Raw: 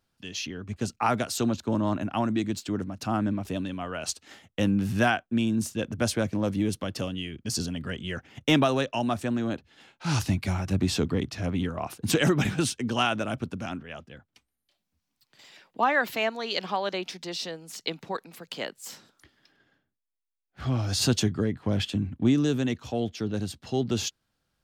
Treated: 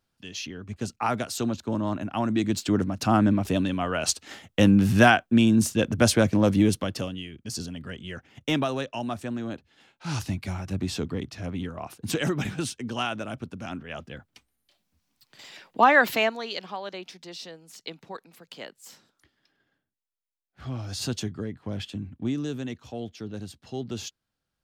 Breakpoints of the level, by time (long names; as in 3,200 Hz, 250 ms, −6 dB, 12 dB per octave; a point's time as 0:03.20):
0:02.11 −1.5 dB
0:02.67 +6.5 dB
0:06.65 +6.5 dB
0:07.28 −4 dB
0:13.55 −4 dB
0:14.07 +6 dB
0:16.13 +6 dB
0:16.65 −6.5 dB